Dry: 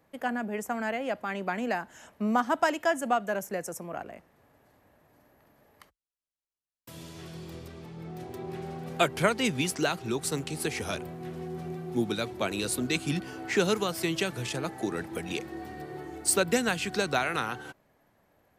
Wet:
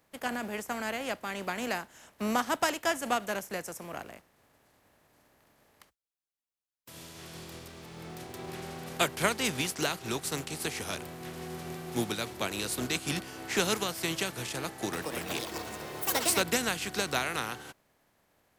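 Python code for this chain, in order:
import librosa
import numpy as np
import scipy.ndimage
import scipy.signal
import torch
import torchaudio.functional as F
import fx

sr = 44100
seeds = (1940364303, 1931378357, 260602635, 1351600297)

y = fx.spec_flatten(x, sr, power=0.63)
y = fx.echo_pitch(y, sr, ms=281, semitones=6, count=3, db_per_echo=-3.0, at=(14.65, 16.76))
y = y * 10.0 ** (-3.0 / 20.0)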